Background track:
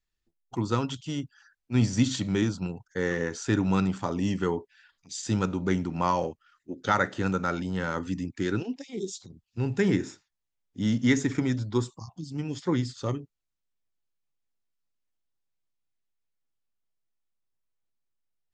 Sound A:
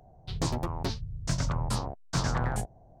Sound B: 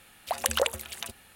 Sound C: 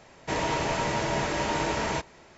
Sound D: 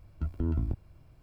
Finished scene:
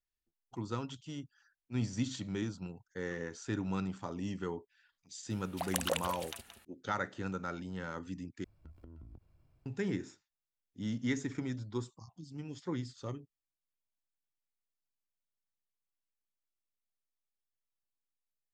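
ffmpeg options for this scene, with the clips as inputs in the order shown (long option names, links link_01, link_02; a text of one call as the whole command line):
ffmpeg -i bed.wav -i cue0.wav -i cue1.wav -i cue2.wav -i cue3.wav -filter_complex "[0:a]volume=-11dB[link_01];[2:a]asplit=2[link_02][link_03];[link_03]adelay=174.9,volume=-9dB,highshelf=frequency=4000:gain=-3.94[link_04];[link_02][link_04]amix=inputs=2:normalize=0[link_05];[4:a]acompressor=threshold=-36dB:ratio=6:attack=3.2:release=140:knee=1:detection=peak[link_06];[link_01]asplit=2[link_07][link_08];[link_07]atrim=end=8.444[link_09];[link_06]atrim=end=1.22,asetpts=PTS-STARTPTS,volume=-12.5dB[link_10];[link_08]atrim=start=9.656[link_11];[link_05]atrim=end=1.35,asetpts=PTS-STARTPTS,volume=-8dB,afade=type=in:duration=0.004:curve=hsin,afade=type=out:start_time=1.346:duration=0.004:curve=hsin,adelay=5300[link_12];[link_09][link_10]acrossfade=duration=0.004:curve1=hsin:curve2=hsin[link_13];[link_13][link_11]acrossfade=duration=0.004:curve1=hsin:curve2=hsin[link_14];[link_14][link_12]amix=inputs=2:normalize=0" out.wav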